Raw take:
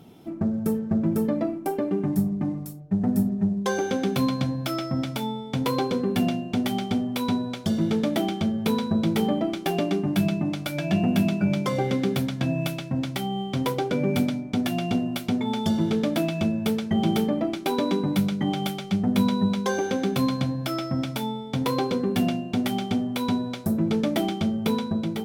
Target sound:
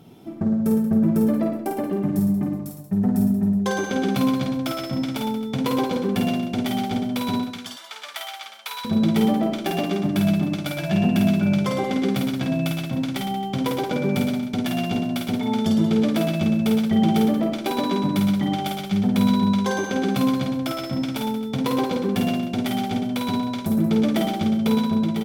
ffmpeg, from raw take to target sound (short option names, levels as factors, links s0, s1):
-filter_complex "[0:a]asettb=1/sr,asplit=3[s0][s1][s2];[s0]atrim=end=7.394[s3];[s1]atrim=start=7.39:end=8.85,asetpts=PTS-STARTPTS,afade=t=in:d=0.004:c=qsin,afade=t=out:st=1.456:d=0.004:c=qsin,highpass=f=980:w=0.5412,highpass=f=980:w=1.3066[s4];[s2]atrim=start=8.846[s5];[s3][s4]acrossfade=d=0.004:c1=hsin:c2=qsin[s6];[s6][s5]acrossfade=d=0.004:c1=qsin:c2=hsin,aecho=1:1:50|110|182|268.4|372.1:0.631|0.398|0.251|0.158|0.1"